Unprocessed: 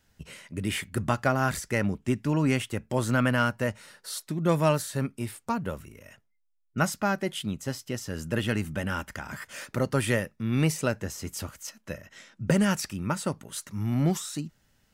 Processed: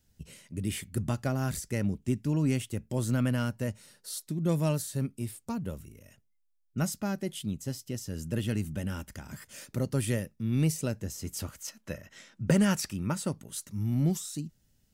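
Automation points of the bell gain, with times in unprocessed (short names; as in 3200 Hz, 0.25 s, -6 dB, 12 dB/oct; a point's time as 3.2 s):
bell 1300 Hz 2.8 oct
11.07 s -13 dB
11.51 s -3.5 dB
12.84 s -3.5 dB
13.87 s -14 dB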